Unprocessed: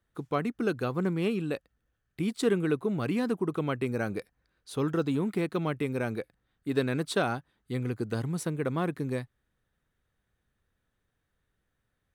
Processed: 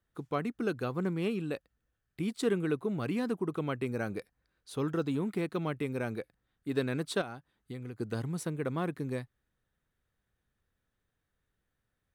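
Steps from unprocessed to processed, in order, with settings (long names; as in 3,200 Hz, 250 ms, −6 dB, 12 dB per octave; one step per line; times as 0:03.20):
0:07.21–0:08.00: downward compressor 6 to 1, threshold −35 dBFS, peak gain reduction 10 dB
level −3.5 dB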